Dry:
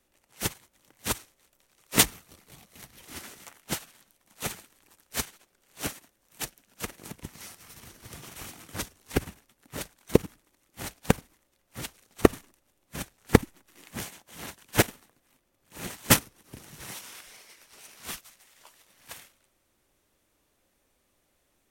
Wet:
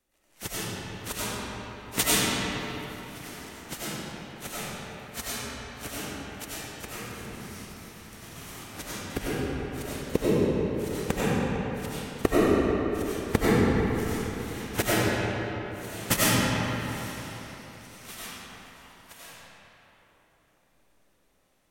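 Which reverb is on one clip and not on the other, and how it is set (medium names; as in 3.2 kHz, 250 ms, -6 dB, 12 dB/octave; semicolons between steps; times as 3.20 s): algorithmic reverb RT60 3.7 s, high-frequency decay 0.6×, pre-delay 55 ms, DRR -10 dB; trim -7 dB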